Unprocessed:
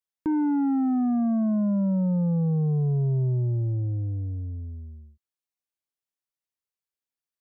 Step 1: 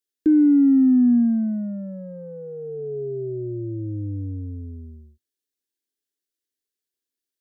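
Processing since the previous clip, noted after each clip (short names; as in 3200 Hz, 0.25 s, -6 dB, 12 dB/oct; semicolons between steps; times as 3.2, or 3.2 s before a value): EQ curve 100 Hz 0 dB, 160 Hz -24 dB, 240 Hz +8 dB, 420 Hz +10 dB, 1000 Hz -28 dB, 1600 Hz +3 dB, 2300 Hz -2 dB, 3500 Hz +5 dB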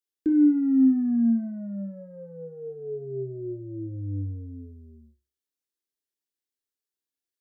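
flutter echo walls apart 5.2 m, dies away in 0.29 s; gain -6 dB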